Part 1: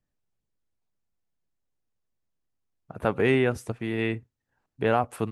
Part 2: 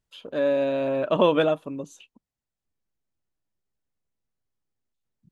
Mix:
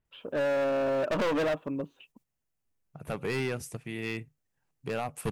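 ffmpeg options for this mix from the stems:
-filter_complex "[0:a]equalizer=f=150:w=5.7:g=13.5,aexciter=amount=2.6:drive=3.6:freq=2.1k,adelay=50,volume=1.5dB[a];[1:a]lowpass=f=2.8k:w=0.5412,lowpass=f=2.8k:w=1.3066,volume=0.5dB,asplit=2[b][c];[c]apad=whole_len=236663[d];[a][d]sidechaingate=range=-10dB:threshold=-60dB:ratio=16:detection=peak[e];[e][b]amix=inputs=2:normalize=0,volume=25.5dB,asoftclip=hard,volume=-25.5dB"

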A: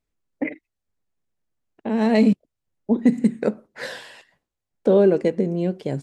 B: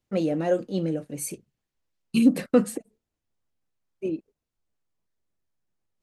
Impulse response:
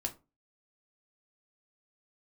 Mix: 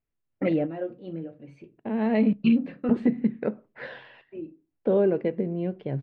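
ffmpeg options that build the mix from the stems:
-filter_complex "[0:a]volume=-7dB,asplit=3[a][b][c];[b]volume=-18dB[d];[1:a]adelay=300,volume=-1.5dB,asplit=2[e][f];[f]volume=-12dB[g];[c]apad=whole_len=278904[h];[e][h]sidechaingate=range=-19dB:threshold=-53dB:ratio=16:detection=peak[i];[2:a]atrim=start_sample=2205[j];[d][g]amix=inputs=2:normalize=0[k];[k][j]afir=irnorm=-1:irlink=0[l];[a][i][l]amix=inputs=3:normalize=0,lowpass=f=3k:w=0.5412,lowpass=f=3k:w=1.3066,equalizer=f=130:w=5.4:g=8"

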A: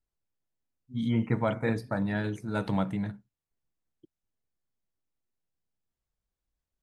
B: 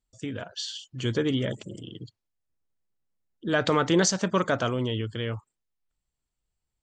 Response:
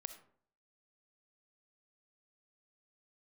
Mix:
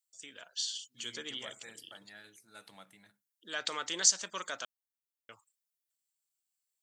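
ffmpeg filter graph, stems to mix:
-filter_complex "[0:a]bandreject=f=950:w=11,volume=-3dB[a];[1:a]highpass=140,volume=3dB,asplit=3[b][c][d];[b]atrim=end=4.65,asetpts=PTS-STARTPTS,afade=t=out:st=4.646:d=0.004:c=hsin[e];[c]atrim=start=4.65:end=5.29,asetpts=PTS-STARTPTS,volume=0[f];[d]atrim=start=5.29,asetpts=PTS-STARTPTS,afade=t=in:d=0.004:c=hsin[g];[e][f][g]concat=n=3:v=0:a=1[h];[a][h]amix=inputs=2:normalize=0,aderivative"

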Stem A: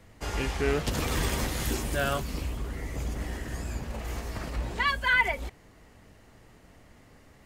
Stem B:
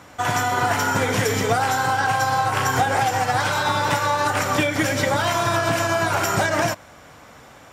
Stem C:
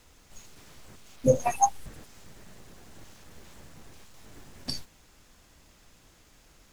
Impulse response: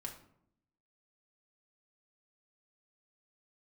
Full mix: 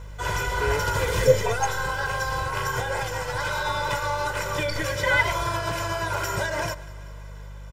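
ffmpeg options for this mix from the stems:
-filter_complex "[0:a]volume=-3dB,asplit=3[a][b][c];[a]atrim=end=2.47,asetpts=PTS-STARTPTS,afade=t=out:st=2.466:d=0.004:c=hsin[d];[b]atrim=start=2.47:end=4.84,asetpts=PTS-STARTPTS,volume=0[e];[c]atrim=start=4.84,asetpts=PTS-STARTPTS,afade=t=in:d=0.004:c=hsin[f];[d][e][f]concat=n=3:v=0:a=1[g];[1:a]aeval=exprs='val(0)+0.0224*(sin(2*PI*50*n/s)+sin(2*PI*2*50*n/s)/2+sin(2*PI*3*50*n/s)/3+sin(2*PI*4*50*n/s)/4+sin(2*PI*5*50*n/s)/5)':c=same,volume=-8.5dB,asplit=2[h][i];[i]volume=-20.5dB[j];[2:a]equalizer=f=11k:t=o:w=2:g=-9,volume=-1dB,asplit=2[k][l];[l]apad=whole_len=328830[m];[g][m]sidechaincompress=threshold=-45dB:ratio=8:attack=16:release=425[n];[j]aecho=0:1:193|386|579|772|965|1158|1351|1544|1737|1930:1|0.6|0.36|0.216|0.13|0.0778|0.0467|0.028|0.0168|0.0101[o];[n][h][k][o]amix=inputs=4:normalize=0,aecho=1:1:2:0.84"

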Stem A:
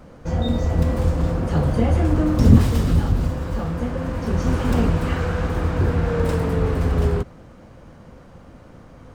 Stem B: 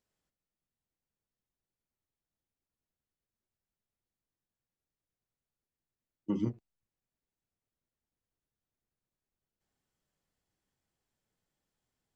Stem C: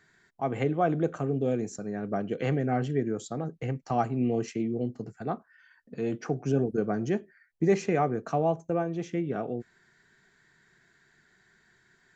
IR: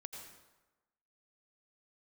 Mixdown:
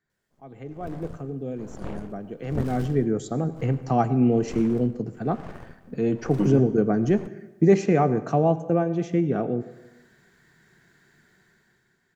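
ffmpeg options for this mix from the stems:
-filter_complex "[0:a]aeval=exprs='0.891*(cos(1*acos(clip(val(0)/0.891,-1,1)))-cos(1*PI/2))+0.282*(cos(3*acos(clip(val(0)/0.891,-1,1)))-cos(3*PI/2))+0.0708*(cos(8*acos(clip(val(0)/0.891,-1,1)))-cos(8*PI/2))':c=same,aeval=exprs='val(0)*pow(10,-22*(0.5-0.5*cos(2*PI*1.1*n/s))/20)':c=same,adelay=50,volume=-18.5dB[a];[1:a]adelay=100,volume=2.5dB,asplit=2[b][c];[c]volume=-9.5dB[d];[2:a]highpass=91,lowshelf=f=450:g=7.5,volume=-11dB,afade=t=in:st=2.46:d=0.73:silence=0.266073,asplit=3[e][f][g];[f]volume=-5dB[h];[g]apad=whole_len=540606[i];[b][i]sidechaincompress=threshold=-45dB:ratio=8:attack=16:release=191[j];[3:a]atrim=start_sample=2205[k];[d][h]amix=inputs=2:normalize=0[l];[l][k]afir=irnorm=-1:irlink=0[m];[a][j][e][m]amix=inputs=4:normalize=0,dynaudnorm=f=150:g=11:m=11dB"

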